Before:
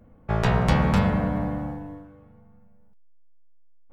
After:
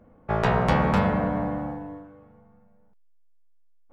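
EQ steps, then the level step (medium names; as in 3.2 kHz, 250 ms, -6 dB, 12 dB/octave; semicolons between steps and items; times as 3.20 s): bass shelf 220 Hz -11.5 dB; treble shelf 2.5 kHz -11.5 dB; +5.0 dB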